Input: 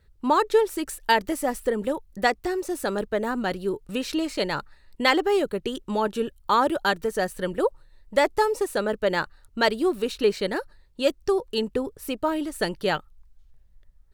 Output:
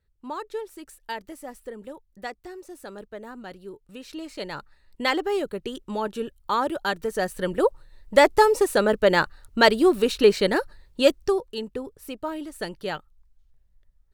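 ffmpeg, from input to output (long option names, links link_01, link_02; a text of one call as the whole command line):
ffmpeg -i in.wav -af "volume=5dB,afade=type=in:start_time=3.98:duration=1.07:silence=0.334965,afade=type=in:start_time=6.85:duration=1.37:silence=0.375837,afade=type=out:start_time=11.03:duration=0.48:silence=0.281838" out.wav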